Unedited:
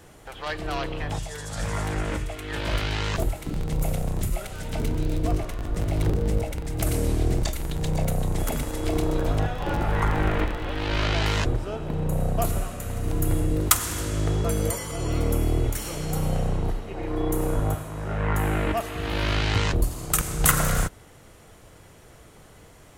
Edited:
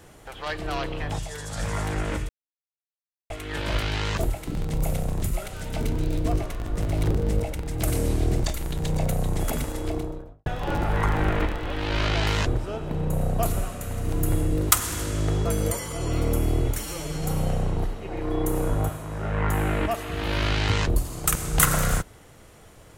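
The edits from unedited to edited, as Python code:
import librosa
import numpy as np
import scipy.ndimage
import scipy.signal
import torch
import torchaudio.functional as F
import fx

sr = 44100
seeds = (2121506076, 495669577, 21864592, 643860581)

y = fx.studio_fade_out(x, sr, start_s=8.6, length_s=0.85)
y = fx.edit(y, sr, fx.insert_silence(at_s=2.29, length_s=1.01),
    fx.stretch_span(start_s=15.82, length_s=0.26, factor=1.5), tone=tone)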